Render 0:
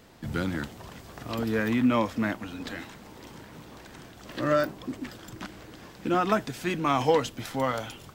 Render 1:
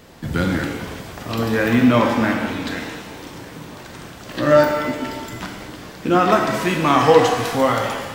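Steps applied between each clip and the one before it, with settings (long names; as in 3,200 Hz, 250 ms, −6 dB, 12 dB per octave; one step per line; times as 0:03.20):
reverb with rising layers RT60 1.4 s, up +7 semitones, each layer −8 dB, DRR 1.5 dB
level +7.5 dB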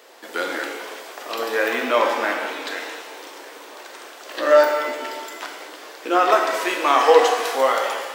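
inverse Chebyshev high-pass filter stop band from 150 Hz, stop band 50 dB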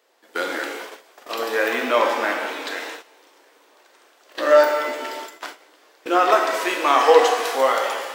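noise gate −33 dBFS, range −15 dB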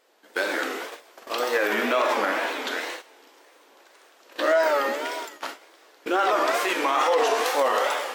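brickwall limiter −13 dBFS, peak gain reduction 11 dB
tape wow and flutter 150 cents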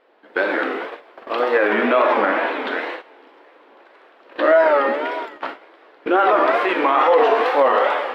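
high-frequency loss of the air 450 metres
level +8.5 dB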